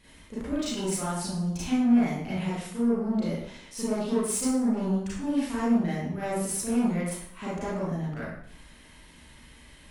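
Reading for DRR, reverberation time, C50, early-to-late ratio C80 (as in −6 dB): −10.0 dB, 0.60 s, −1.5 dB, 3.0 dB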